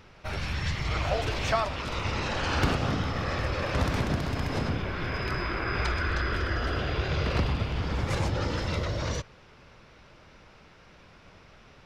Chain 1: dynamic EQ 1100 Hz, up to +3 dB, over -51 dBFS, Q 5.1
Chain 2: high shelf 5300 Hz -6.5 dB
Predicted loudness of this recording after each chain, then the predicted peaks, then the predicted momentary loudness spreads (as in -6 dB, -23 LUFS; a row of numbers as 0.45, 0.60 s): -29.5, -30.0 LUFS; -12.5, -13.0 dBFS; 5, 4 LU